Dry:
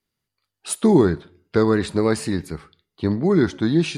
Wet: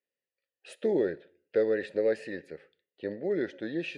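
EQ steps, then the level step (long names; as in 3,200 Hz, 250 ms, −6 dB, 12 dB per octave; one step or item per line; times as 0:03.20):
formant filter e
+3.0 dB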